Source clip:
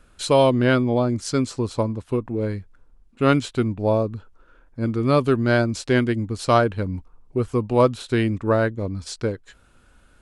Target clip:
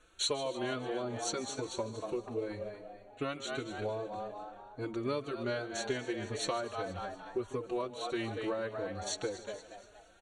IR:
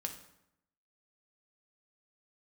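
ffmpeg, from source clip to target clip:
-filter_complex "[0:a]lowpass=8900,lowshelf=frequency=280:width_type=q:width=1.5:gain=-7,asplit=2[link_01][link_02];[link_02]asplit=4[link_03][link_04][link_05][link_06];[link_03]adelay=236,afreqshift=93,volume=-11.5dB[link_07];[link_04]adelay=472,afreqshift=186,volume=-19.7dB[link_08];[link_05]adelay=708,afreqshift=279,volume=-27.9dB[link_09];[link_06]adelay=944,afreqshift=372,volume=-36dB[link_10];[link_07][link_08][link_09][link_10]amix=inputs=4:normalize=0[link_11];[link_01][link_11]amix=inputs=2:normalize=0,acompressor=threshold=-26dB:ratio=6,asuperstop=centerf=5000:order=8:qfactor=4.5,equalizer=frequency=5000:width_type=o:width=1.7:gain=7.5,asplit=2[link_12][link_13];[link_13]aecho=0:1:149|298|447|596|745|894:0.168|0.099|0.0584|0.0345|0.0203|0.012[link_14];[link_12][link_14]amix=inputs=2:normalize=0,asplit=2[link_15][link_16];[link_16]adelay=4.2,afreqshift=2.5[link_17];[link_15][link_17]amix=inputs=2:normalize=1,volume=-4dB"

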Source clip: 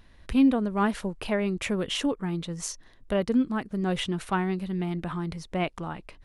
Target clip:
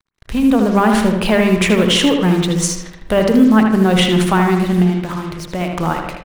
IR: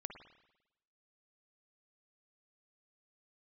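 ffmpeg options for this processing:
-filter_complex "[0:a]equalizer=frequency=75:width_type=o:width=1.1:gain=-2.5,bandreject=frequency=50:width_type=h:width=6,bandreject=frequency=100:width_type=h:width=6,bandreject=frequency=150:width_type=h:width=6,bandreject=frequency=200:width_type=h:width=6,bandreject=frequency=250:width_type=h:width=6,bandreject=frequency=300:width_type=h:width=6,bandreject=frequency=350:width_type=h:width=6,bandreject=frequency=400:width_type=h:width=6,asettb=1/sr,asplit=3[link_01][link_02][link_03];[link_01]atrim=end=4.824[link_04];[link_02]atrim=start=4.82:end=5.72,asetpts=PTS-STARTPTS,afade=type=in:duration=0.004:curve=qsin,afade=type=out:start_time=0.896:duration=0.004:curve=qsin,acompressor=threshold=-42dB:ratio=2.5[link_05];[link_03]atrim=start=5.716[link_06];[link_04][link_05]acrossfade=duration=0.004:curve1=hsin:curve2=qsin[link_07];[link_07][link_06]acrossfade=duration=0.004:curve1=qsin:curve2=hsin,alimiter=limit=-22dB:level=0:latency=1:release=53,dynaudnorm=framelen=320:gausssize=3:maxgain=7dB,acrusher=bits=6:mix=0:aa=0.5,asplit=2[link_08][link_09];[link_09]adelay=78,lowpass=frequency=3600:poles=1,volume=-5dB,asplit=2[link_10][link_11];[link_11]adelay=78,lowpass=frequency=3600:poles=1,volume=0.49,asplit=2[link_12][link_13];[link_13]adelay=78,lowpass=frequency=3600:poles=1,volume=0.49,asplit=2[link_14][link_15];[link_15]adelay=78,lowpass=frequency=3600:poles=1,volume=0.49,asplit=2[link_16][link_17];[link_17]adelay=78,lowpass=frequency=3600:poles=1,volume=0.49,asplit=2[link_18][link_19];[link_19]adelay=78,lowpass=frequency=3600:poles=1,volume=0.49[link_20];[link_08][link_10][link_12][link_14][link_16][link_18][link_20]amix=inputs=7:normalize=0,asplit=2[link_21][link_22];[1:a]atrim=start_sample=2205[link_23];[link_22][link_23]afir=irnorm=-1:irlink=0,volume=7.5dB[link_24];[link_21][link_24]amix=inputs=2:normalize=0,volume=1.5dB"

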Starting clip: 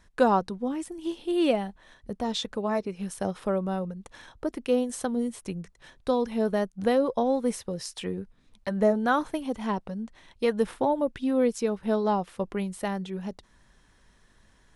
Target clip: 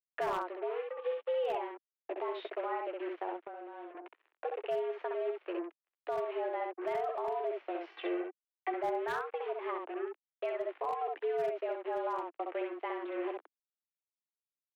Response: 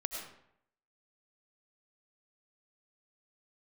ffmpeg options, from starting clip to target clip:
-filter_complex "[0:a]acrusher=bits=5:mix=0:aa=0.5,highpass=frequency=150:width_type=q:width=0.5412,highpass=frequency=150:width_type=q:width=1.307,lowpass=frequency=2600:width_type=q:width=0.5176,lowpass=frequency=2600:width_type=q:width=0.7071,lowpass=frequency=2600:width_type=q:width=1.932,afreqshift=170,aecho=1:1:12|65:0.299|0.631,volume=15dB,asoftclip=hard,volume=-15dB,crystalizer=i=1:c=0,alimiter=limit=-23dB:level=0:latency=1:release=275,asettb=1/sr,asplit=3[link_01][link_02][link_03];[link_01]atrim=end=3.364[link_04];[link_02]atrim=start=3.36:end=3.95,asetpts=PTS-STARTPTS,afade=type=in:duration=0.004:curve=qsin,afade=type=out:start_time=0.586:duration=0.004:curve=qsin,acompressor=threshold=-40dB:ratio=6[link_05];[link_03]atrim=start=3.946[link_06];[link_04][link_05]acrossfade=duration=0.004:curve1=hsin:curve2=qsin[link_07];[link_07][link_06]acrossfade=duration=0.004:curve1=qsin:curve2=hsin,asettb=1/sr,asplit=3[link_08][link_09][link_10];[link_08]atrim=end=7.894[link_11];[link_09]atrim=start=7.89:end=8.74,asetpts=PTS-STARTPTS,afade=type=in:duration=0.004:curve=qsin,afade=type=out:start_time=0.846:duration=0.004:curve=qsin,aecho=1:1:2.6:0.77,atrim=end_sample=37485[link_12];[link_10]atrim=start=8.736[link_13];[link_11][link_12]acrossfade=duration=0.004:curve1=hsin:curve2=qsin[link_14];[link_14][link_13]acrossfade=duration=0.004:curve1=qsin:curve2=hsin,volume=-4dB"

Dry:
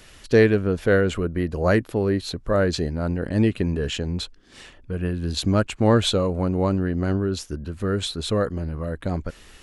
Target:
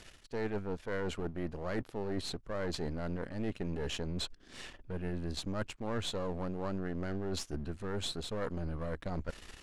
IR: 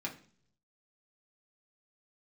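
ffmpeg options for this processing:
-af "aeval=exprs='if(lt(val(0),0),0.251*val(0),val(0))':channel_layout=same,lowpass=9900,areverse,acompressor=threshold=-33dB:ratio=6,areverse"

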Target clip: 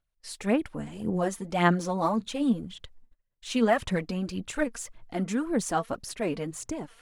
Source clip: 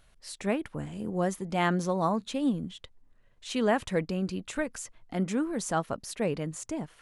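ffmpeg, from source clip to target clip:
ffmpeg -i in.wav -af "agate=range=-26dB:threshold=-55dB:ratio=16:detection=peak,aphaser=in_gain=1:out_gain=1:delay=4.5:decay=0.54:speed=1.8:type=sinusoidal" out.wav

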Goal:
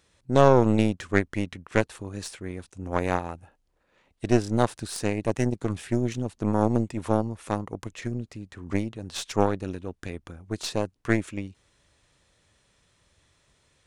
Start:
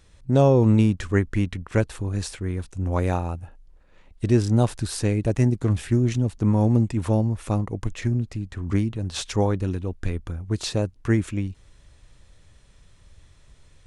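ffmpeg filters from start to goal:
ffmpeg -i in.wav -af "highpass=frequency=260:poles=1,aeval=exprs='0.398*(cos(1*acos(clip(val(0)/0.398,-1,1)))-cos(1*PI/2))+0.2*(cos(2*acos(clip(val(0)/0.398,-1,1)))-cos(2*PI/2))+0.02*(cos(7*acos(clip(val(0)/0.398,-1,1)))-cos(7*PI/2))':channel_layout=same" out.wav

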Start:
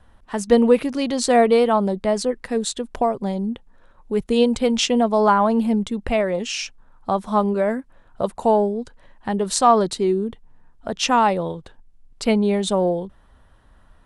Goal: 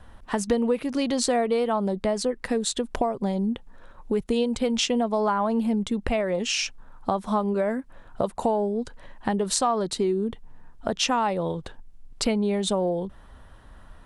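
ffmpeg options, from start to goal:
ffmpeg -i in.wav -af "acompressor=threshold=-28dB:ratio=4,volume=5dB" out.wav

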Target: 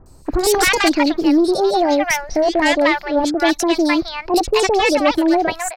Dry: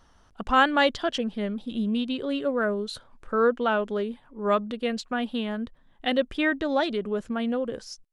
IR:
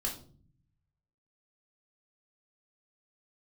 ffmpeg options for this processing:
-filter_complex "[0:a]asetrate=62181,aresample=44100,aeval=exprs='0.376*sin(PI/2*3.55*val(0)/0.376)':channel_layout=same,acrossover=split=920|4200[link_01][link_02][link_03];[link_03]adelay=60[link_04];[link_02]adelay=260[link_05];[link_01][link_05][link_04]amix=inputs=3:normalize=0"

